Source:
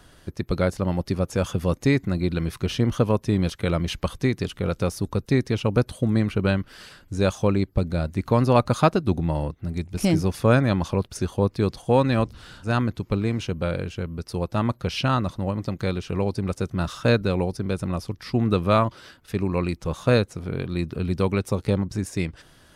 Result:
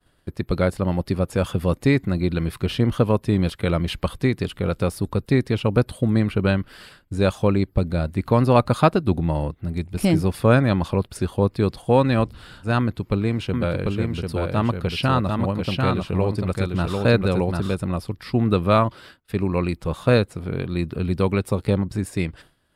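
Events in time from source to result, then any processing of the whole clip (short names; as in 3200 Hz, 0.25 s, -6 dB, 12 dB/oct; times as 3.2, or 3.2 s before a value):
12.79–17.75 echo 0.744 s -3.5 dB
whole clip: expander -42 dBFS; bell 6100 Hz -12 dB 0.35 oct; gain +2 dB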